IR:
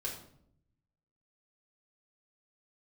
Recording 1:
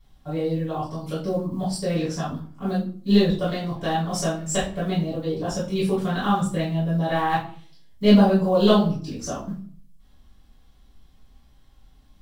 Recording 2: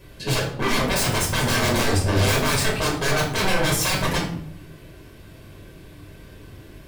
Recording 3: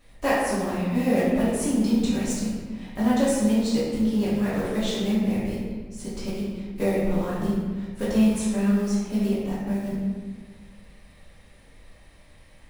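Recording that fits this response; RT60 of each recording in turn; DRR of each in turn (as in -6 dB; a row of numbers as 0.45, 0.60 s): 2; 0.45, 0.70, 1.5 s; -11.5, -3.0, -11.0 dB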